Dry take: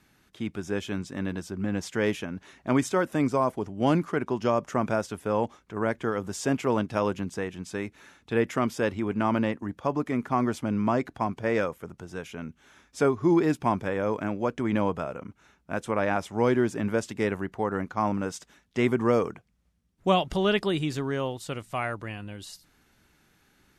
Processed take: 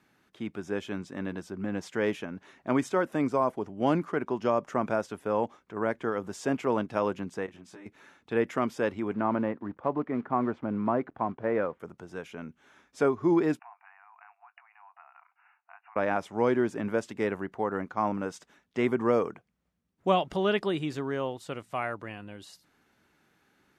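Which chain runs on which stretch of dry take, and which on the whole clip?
7.46–7.86 s: compression 10:1, threshold -36 dBFS + detune thickener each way 17 cents
9.14–11.80 s: block-companded coder 5-bit + low-pass 1.7 kHz
13.59–15.96 s: compression 16:1, threshold -40 dBFS + brick-wall FIR band-pass 680–2900 Hz + doubling 20 ms -13.5 dB
whole clip: high-pass 250 Hz 6 dB/octave; treble shelf 2.9 kHz -9.5 dB

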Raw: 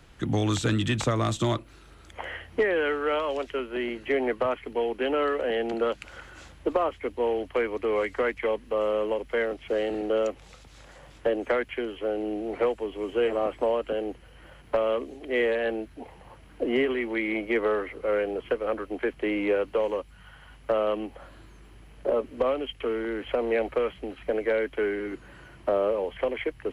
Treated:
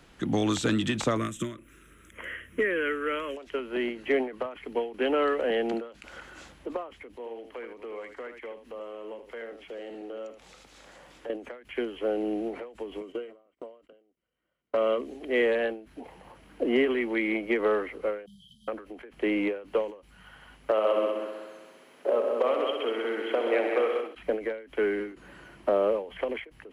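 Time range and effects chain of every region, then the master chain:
1.17–3.37 s: treble shelf 7.5 kHz +9.5 dB + static phaser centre 1.9 kHz, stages 4
7.16–11.30 s: peaking EQ 74 Hz -8 dB 2.4 oct + compression 2:1, threshold -48 dBFS + delay 78 ms -8.5 dB
13.01–15.01 s: gate -40 dBFS, range -35 dB + transient shaper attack -3 dB, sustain +5 dB + comb of notches 840 Hz
18.26–18.68 s: brick-wall FIR band-stop 210–3000 Hz + comb of notches 1.4 kHz
20.71–24.15 s: high-pass 370 Hz + multi-head delay 64 ms, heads all three, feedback 50%, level -8 dB
whole clip: resonant low shelf 150 Hz -6 dB, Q 1.5; endings held to a fixed fall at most 130 dB/s

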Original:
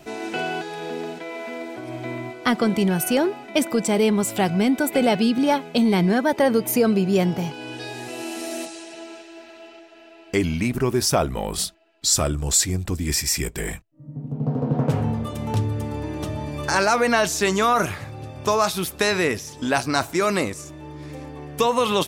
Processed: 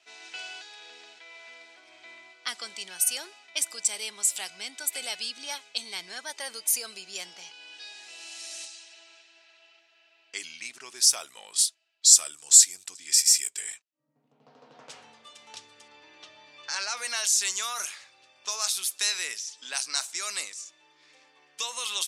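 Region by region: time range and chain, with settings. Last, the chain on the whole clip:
15.88–16.97 s: low-pass 4.6 kHz + bass shelf 85 Hz +8.5 dB
whole clip: RIAA curve recording; level-controlled noise filter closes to 2.8 kHz, open at -14.5 dBFS; frequency weighting ITU-R 468; trim -18 dB

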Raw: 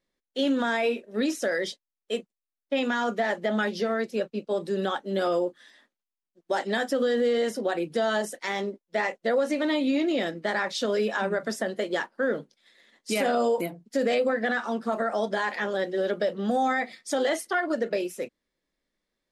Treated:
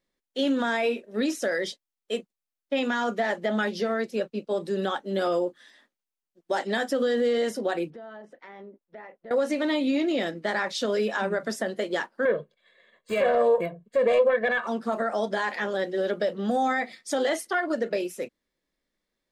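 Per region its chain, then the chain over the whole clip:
7.90–9.31 s: low-pass 1.8 kHz + compression 2.5:1, threshold -48 dBFS
12.25–14.67 s: self-modulated delay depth 0.12 ms + boxcar filter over 8 samples + comb 1.8 ms, depth 87%
whole clip: none

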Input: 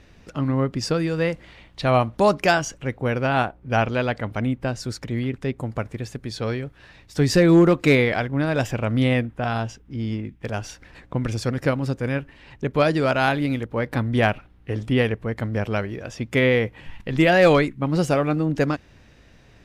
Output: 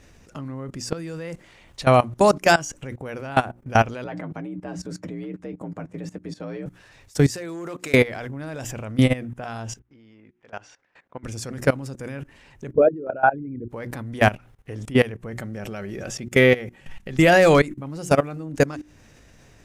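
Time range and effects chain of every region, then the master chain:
4.04–6.66 s: comb of notches 160 Hz + frequency shift +56 Hz + low-pass 1.6 kHz 6 dB/octave
7.32–7.94 s: high-pass 520 Hz 6 dB/octave + compression, threshold -21 dBFS
9.79–11.24 s: high-pass 1.3 kHz 6 dB/octave + tape spacing loss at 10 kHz 32 dB
12.73–13.69 s: resonances exaggerated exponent 3 + high-pass 47 Hz 6 dB/octave
15.30–17.23 s: band-stop 1 kHz, Q 6.5 + comb 5.3 ms, depth 33%
whole clip: resonant high shelf 5.3 kHz +7 dB, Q 1.5; hum notches 60/120/180/240/300/360 Hz; level held to a coarse grid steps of 19 dB; trim +5.5 dB

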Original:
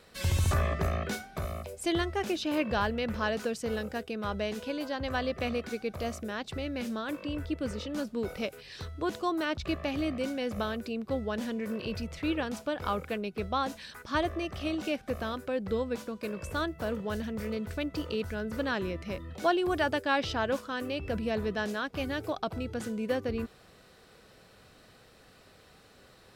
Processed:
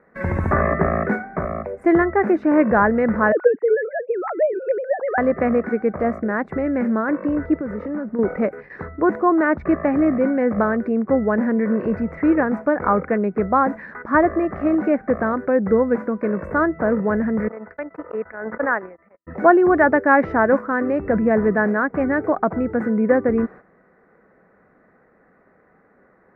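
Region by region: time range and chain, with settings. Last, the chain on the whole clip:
3.32–5.18 s: formants replaced by sine waves + treble shelf 2.4 kHz -10.5 dB
7.59–8.19 s: treble shelf 8.5 kHz -8 dB + compression 12:1, threshold -36 dBFS
17.48–19.27 s: gate -32 dBFS, range -45 dB + three-band isolator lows -15 dB, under 490 Hz, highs -18 dB, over 2.7 kHz + swell ahead of each attack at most 49 dB/s
whole clip: FFT filter 120 Hz 0 dB, 180 Hz +13 dB, 2 kHz +15 dB, 3.1 kHz -23 dB; gate -38 dBFS, range -11 dB; bass shelf 410 Hz +5 dB; trim -2 dB

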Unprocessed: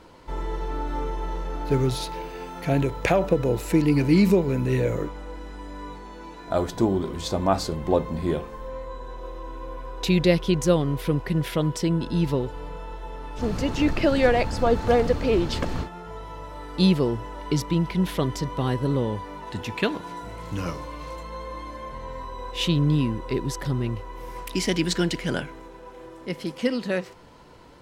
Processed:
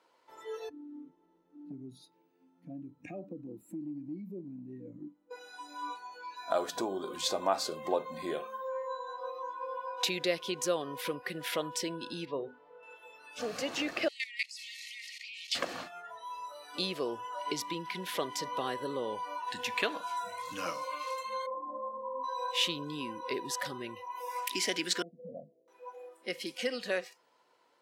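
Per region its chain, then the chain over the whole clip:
0.69–5.31 s: FFT filter 300 Hz 0 dB, 450 Hz -18 dB, 1.3 kHz -24 dB + compression 3:1, threshold -23 dBFS + high-pass 82 Hz
12.25–12.83 s: tape spacing loss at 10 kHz 27 dB + hum notches 50/100/150/200/250/300/350/400 Hz
14.08–15.55 s: brick-wall FIR band-pass 1.8–13 kHz + level held to a coarse grid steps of 16 dB
21.46–22.24 s: low-pass 1 kHz 24 dB/octave + peaking EQ 290 Hz +4 dB 0.76 oct
25.02–25.68 s: de-hum 69.77 Hz, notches 6 + compression 8:1, threshold -27 dBFS + rippled Chebyshev low-pass 710 Hz, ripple 6 dB
whole clip: spectral noise reduction 19 dB; compression 2:1, threshold -32 dBFS; high-pass 520 Hz 12 dB/octave; trim +3 dB

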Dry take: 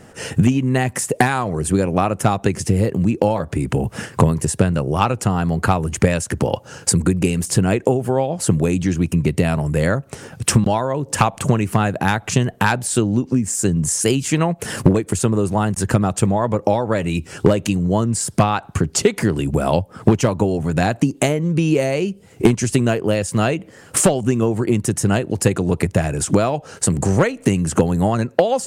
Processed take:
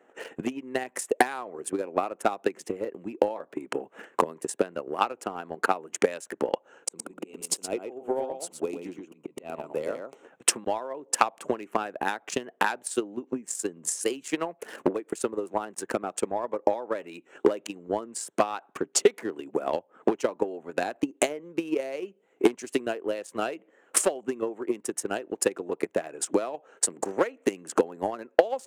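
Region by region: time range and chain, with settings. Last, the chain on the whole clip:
6.85–10.25 s: peaking EQ 1.7 kHz -13.5 dB 0.33 oct + slow attack 188 ms + delay 117 ms -4 dB
whole clip: local Wiener filter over 9 samples; high-pass 310 Hz 24 dB/octave; transient shaper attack +11 dB, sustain -1 dB; trim -13.5 dB

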